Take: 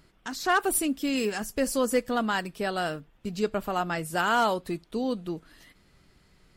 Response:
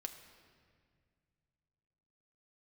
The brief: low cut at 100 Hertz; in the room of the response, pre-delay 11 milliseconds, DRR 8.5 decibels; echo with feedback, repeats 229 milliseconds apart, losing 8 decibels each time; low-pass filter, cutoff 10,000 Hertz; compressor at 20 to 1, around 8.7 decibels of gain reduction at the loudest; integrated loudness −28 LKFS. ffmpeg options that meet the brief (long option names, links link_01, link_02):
-filter_complex "[0:a]highpass=100,lowpass=10000,acompressor=threshold=-27dB:ratio=20,aecho=1:1:229|458|687|916|1145:0.398|0.159|0.0637|0.0255|0.0102,asplit=2[link_01][link_02];[1:a]atrim=start_sample=2205,adelay=11[link_03];[link_02][link_03]afir=irnorm=-1:irlink=0,volume=-5.5dB[link_04];[link_01][link_04]amix=inputs=2:normalize=0,volume=4dB"